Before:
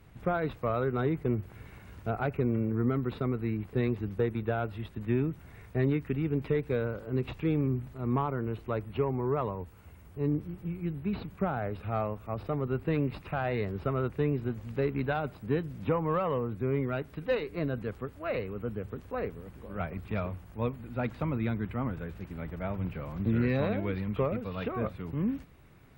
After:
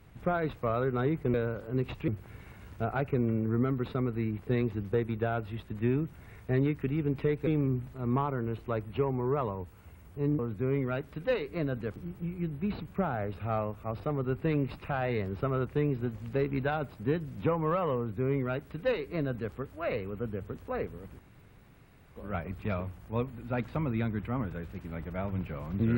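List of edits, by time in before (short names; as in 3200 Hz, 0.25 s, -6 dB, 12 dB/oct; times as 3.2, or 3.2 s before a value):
6.73–7.47 move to 1.34
16.4–17.97 copy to 10.39
19.62 insert room tone 0.97 s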